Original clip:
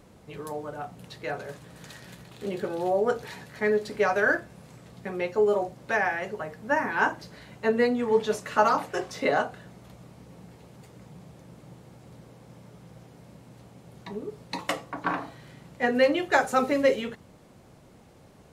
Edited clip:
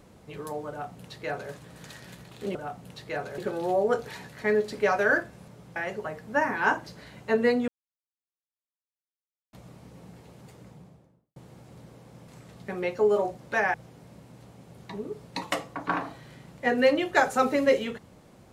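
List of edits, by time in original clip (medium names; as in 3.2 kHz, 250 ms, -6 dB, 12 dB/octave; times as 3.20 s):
0.69–1.52 s: copy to 2.55 s
4.65–6.11 s: swap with 12.63–12.91 s
8.03–9.88 s: mute
10.89–11.71 s: studio fade out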